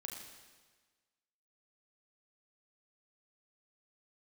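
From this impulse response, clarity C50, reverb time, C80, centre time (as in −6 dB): 3.5 dB, 1.4 s, 4.5 dB, 56 ms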